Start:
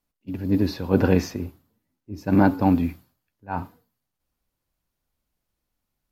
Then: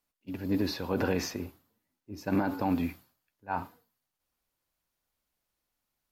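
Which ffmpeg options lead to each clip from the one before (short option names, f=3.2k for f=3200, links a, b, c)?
-af "lowshelf=f=330:g=-10.5,alimiter=limit=-18.5dB:level=0:latency=1:release=54"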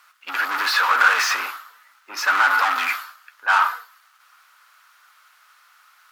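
-filter_complex "[0:a]asplit=2[a][b];[b]highpass=f=720:p=1,volume=31dB,asoftclip=type=tanh:threshold=-18dB[c];[a][c]amix=inputs=2:normalize=0,lowpass=f=3.6k:p=1,volume=-6dB,highpass=f=1.3k:t=q:w=4.9,volume=5dB"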